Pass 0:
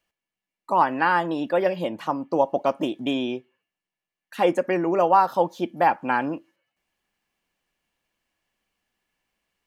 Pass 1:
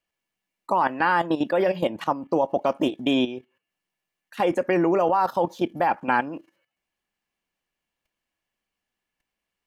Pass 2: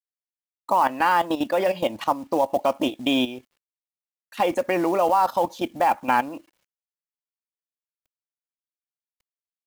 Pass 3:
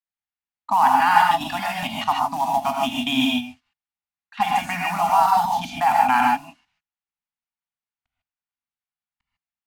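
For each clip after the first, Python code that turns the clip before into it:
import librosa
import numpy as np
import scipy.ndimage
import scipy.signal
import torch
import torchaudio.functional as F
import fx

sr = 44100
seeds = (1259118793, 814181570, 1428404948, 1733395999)

y1 = fx.level_steps(x, sr, step_db=13)
y1 = y1 * librosa.db_to_amplitude(6.0)
y2 = fx.graphic_eq_15(y1, sr, hz=(160, 400, 1600), db=(-11, -8, -6))
y2 = fx.quant_companded(y2, sr, bits=6)
y2 = y2 * librosa.db_to_amplitude(4.0)
y3 = fx.env_lowpass(y2, sr, base_hz=2600.0, full_db=-20.0)
y3 = scipy.signal.sosfilt(scipy.signal.ellip(3, 1.0, 40, [250.0, 740.0], 'bandstop', fs=sr, output='sos'), y3)
y3 = fx.rev_gated(y3, sr, seeds[0], gate_ms=170, shape='rising', drr_db=-1.5)
y3 = y3 * librosa.db_to_amplitude(2.0)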